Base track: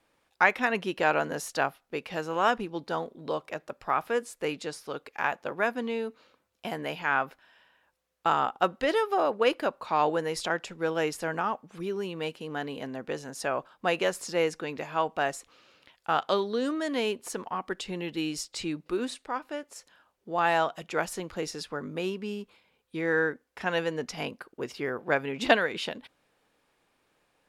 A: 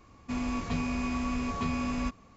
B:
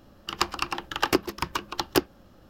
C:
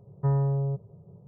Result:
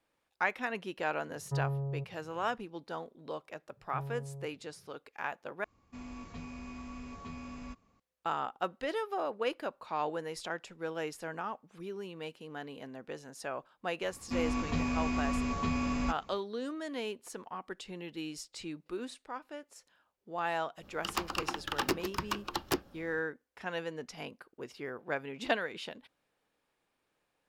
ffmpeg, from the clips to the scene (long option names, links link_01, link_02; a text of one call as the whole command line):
ffmpeg -i bed.wav -i cue0.wav -i cue1.wav -i cue2.wav -filter_complex "[3:a]asplit=2[link_01][link_02];[1:a]asplit=2[link_03][link_04];[0:a]volume=-9dB[link_05];[2:a]asoftclip=type=hard:threshold=-19.5dB[link_06];[link_05]asplit=2[link_07][link_08];[link_07]atrim=end=5.644[link_09];[link_03]atrim=end=2.36,asetpts=PTS-STARTPTS,volume=-13.5dB[link_10];[link_08]atrim=start=7.996[link_11];[link_01]atrim=end=1.27,asetpts=PTS-STARTPTS,volume=-9dB,afade=type=in:duration=0.004:curve=hsin,afade=type=out:start_time=1.266:duration=0.004:curve=hsin,adelay=1280[link_12];[link_02]atrim=end=1.27,asetpts=PTS-STARTPTS,volume=-17dB,afade=type=in:duration=0.004:curve=hsin,afade=type=out:start_time=1.266:duration=0.004:curve=hsin,adelay=3700[link_13];[link_04]atrim=end=2.36,asetpts=PTS-STARTPTS,volume=-1dB,afade=type=in:duration=0.004:curve=hsin,afade=type=out:start_time=2.356:duration=0.004:curve=hsin,adelay=14020[link_14];[link_06]atrim=end=2.49,asetpts=PTS-STARTPTS,volume=-4dB,afade=type=in:duration=0.1,afade=type=out:start_time=2.39:duration=0.1,adelay=20760[link_15];[link_09][link_10]acrossfade=duration=0.004:curve1=hsin:curve2=hsin[link_16];[link_16][link_11]acrossfade=duration=0.004:curve1=hsin:curve2=hsin[link_17];[link_17][link_12][link_13][link_14][link_15]amix=inputs=5:normalize=0" out.wav